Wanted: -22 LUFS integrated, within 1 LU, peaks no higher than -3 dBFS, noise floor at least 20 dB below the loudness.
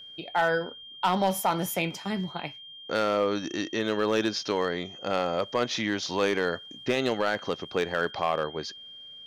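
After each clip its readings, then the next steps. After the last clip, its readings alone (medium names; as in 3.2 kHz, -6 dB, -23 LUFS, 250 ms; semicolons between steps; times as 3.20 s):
clipped samples 0.5%; clipping level -16.5 dBFS; steady tone 3.2 kHz; tone level -43 dBFS; loudness -28.5 LUFS; peak level -16.5 dBFS; loudness target -22.0 LUFS
-> clip repair -16.5 dBFS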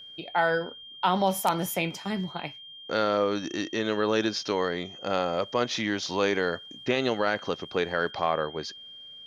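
clipped samples 0.0%; steady tone 3.2 kHz; tone level -43 dBFS
-> band-stop 3.2 kHz, Q 30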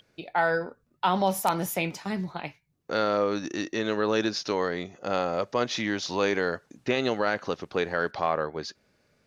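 steady tone not found; loudness -28.0 LUFS; peak level -7.5 dBFS; loudness target -22.0 LUFS
-> trim +6 dB; peak limiter -3 dBFS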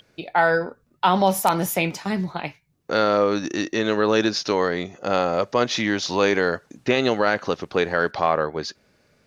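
loudness -22.0 LUFS; peak level -3.0 dBFS; noise floor -64 dBFS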